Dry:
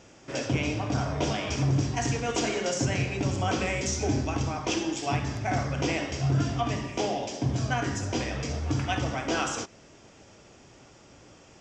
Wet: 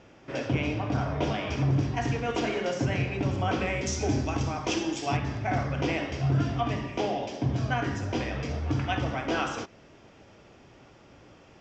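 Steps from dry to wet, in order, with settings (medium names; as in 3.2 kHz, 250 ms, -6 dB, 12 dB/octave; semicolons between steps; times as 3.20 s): low-pass 3.3 kHz 12 dB/octave, from 3.87 s 6.7 kHz, from 5.17 s 3.7 kHz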